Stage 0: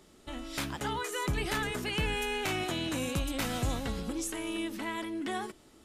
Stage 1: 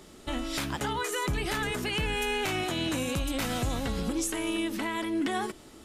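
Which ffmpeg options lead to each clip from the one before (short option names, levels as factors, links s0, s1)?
-af "alimiter=level_in=1.78:limit=0.0631:level=0:latency=1:release=243,volume=0.562,volume=2.51"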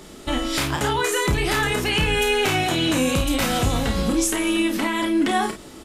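-af "aecho=1:1:31|51:0.501|0.335,volume=2.51"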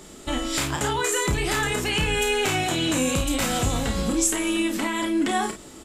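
-af "equalizer=f=7500:t=o:w=0.31:g=8.5,volume=0.708"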